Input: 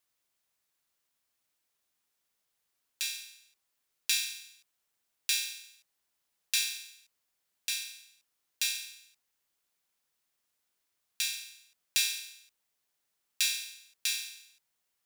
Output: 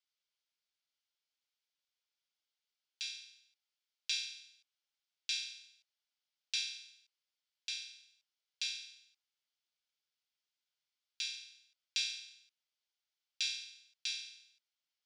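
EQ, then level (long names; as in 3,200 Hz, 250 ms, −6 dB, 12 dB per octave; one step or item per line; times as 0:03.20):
loudspeaker in its box 500–4,300 Hz, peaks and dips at 730 Hz −5 dB, 1,100 Hz −10 dB, 1,800 Hz −9 dB, 2,600 Hz −5 dB, 3,900 Hz −5 dB
spectral tilt +4.5 dB per octave
−7.5 dB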